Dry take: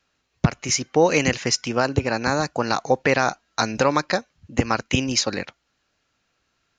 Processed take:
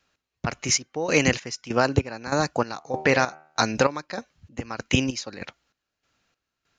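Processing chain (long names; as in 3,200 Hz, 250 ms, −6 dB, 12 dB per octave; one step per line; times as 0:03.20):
0:02.77–0:03.60: hum removal 77.05 Hz, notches 38
gate pattern "x..xx..x" 97 BPM −12 dB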